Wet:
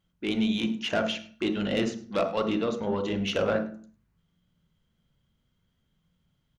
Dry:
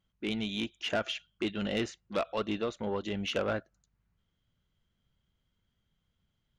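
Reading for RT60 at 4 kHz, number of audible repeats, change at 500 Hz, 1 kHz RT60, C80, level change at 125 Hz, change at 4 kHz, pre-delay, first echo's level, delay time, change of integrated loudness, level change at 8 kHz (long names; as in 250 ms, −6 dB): 0.35 s, 1, +5.5 dB, 0.45 s, 14.5 dB, +5.0 dB, +3.0 dB, 26 ms, −19.0 dB, 103 ms, +5.5 dB, +3.5 dB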